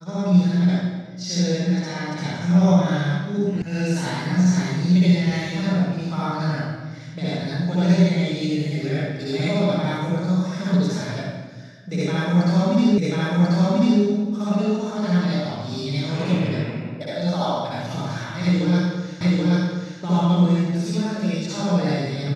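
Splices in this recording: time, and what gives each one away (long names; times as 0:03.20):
0:03.62: cut off before it has died away
0:12.98: the same again, the last 1.04 s
0:19.21: the same again, the last 0.78 s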